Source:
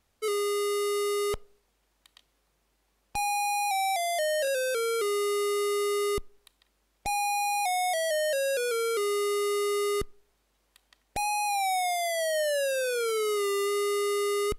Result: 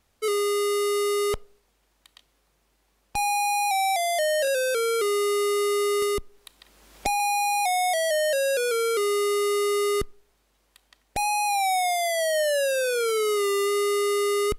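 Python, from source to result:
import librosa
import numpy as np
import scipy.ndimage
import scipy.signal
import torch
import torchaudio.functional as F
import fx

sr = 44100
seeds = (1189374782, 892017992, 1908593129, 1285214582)

y = fx.band_squash(x, sr, depth_pct=70, at=(6.02, 7.2))
y = y * 10.0 ** (4.0 / 20.0)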